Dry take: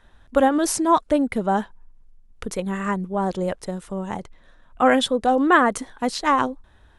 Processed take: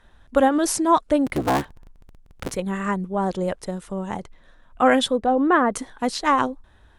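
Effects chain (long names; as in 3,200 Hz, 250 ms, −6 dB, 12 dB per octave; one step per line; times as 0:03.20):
0:01.26–0:02.56: sub-harmonics by changed cycles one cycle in 3, inverted
0:05.18–0:05.74: low-pass filter 1,200 Hz 6 dB per octave
Opus 96 kbit/s 48,000 Hz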